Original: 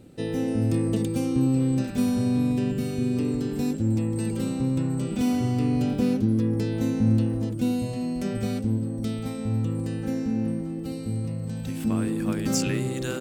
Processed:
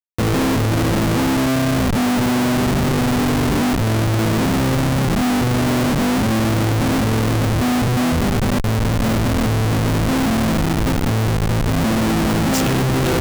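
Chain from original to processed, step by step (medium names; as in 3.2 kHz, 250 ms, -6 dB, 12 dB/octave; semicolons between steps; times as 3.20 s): 8.12–8.85 s: bass shelf 330 Hz -7.5 dB; Schmitt trigger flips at -30 dBFS; trim +8.5 dB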